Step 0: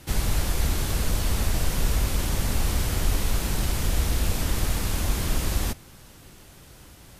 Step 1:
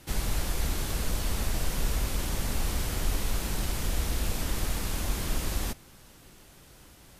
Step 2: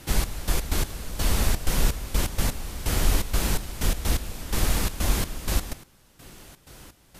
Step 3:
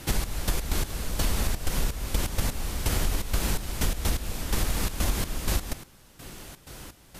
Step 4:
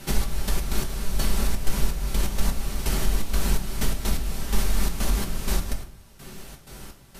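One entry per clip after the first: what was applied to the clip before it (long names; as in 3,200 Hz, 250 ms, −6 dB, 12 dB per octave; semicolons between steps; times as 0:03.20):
parametric band 91 Hz −4 dB 1.3 octaves; level −4 dB
gate pattern "xx..x.x...xxx." 126 BPM −12 dB; level +7 dB
downward compressor 6 to 1, threshold −25 dBFS, peak gain reduction 11 dB; level +3.5 dB
convolution reverb RT60 0.50 s, pre-delay 4 ms, DRR 2 dB; level −2 dB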